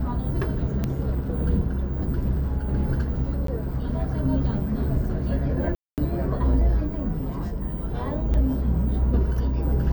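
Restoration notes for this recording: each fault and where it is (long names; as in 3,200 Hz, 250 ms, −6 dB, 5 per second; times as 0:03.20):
0:00.84: click −13 dBFS
0:03.47–0:03.48: drop-out 13 ms
0:05.75–0:05.98: drop-out 228 ms
0:08.34: drop-out 4.9 ms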